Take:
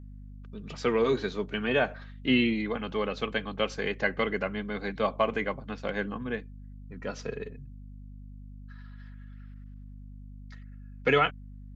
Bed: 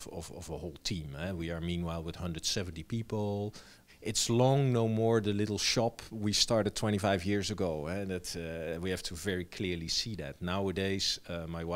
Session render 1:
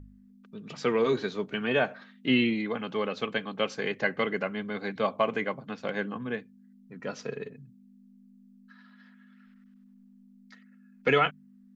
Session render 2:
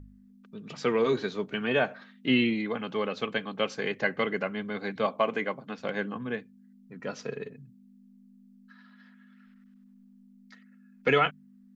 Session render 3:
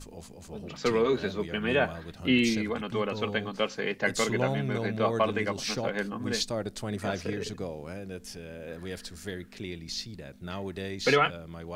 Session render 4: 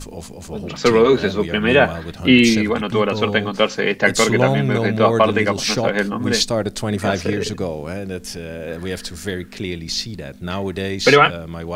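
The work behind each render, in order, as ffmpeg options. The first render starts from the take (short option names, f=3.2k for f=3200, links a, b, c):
-af "bandreject=f=50:t=h:w=4,bandreject=f=100:t=h:w=4,bandreject=f=150:t=h:w=4"
-filter_complex "[0:a]asettb=1/sr,asplit=3[a][b][c];[a]atrim=end=5.064[d];[b]atrim=start=5.06:end=5.79,asetpts=PTS-STARTPTS,afade=t=in:d=0.004:c=qsin,afade=t=out:st=0.726:d=0.004:c=qsin,highpass=160[e];[c]atrim=start=5.786[f];[d][e]acrossfade=d=0.004:c1=hsin:c2=qsin[g];[g][f]acrossfade=d=0.004:c1=qsin:c2=hsin"
-filter_complex "[1:a]volume=-3.5dB[a];[0:a][a]amix=inputs=2:normalize=0"
-af "volume=12dB,alimiter=limit=-1dB:level=0:latency=1"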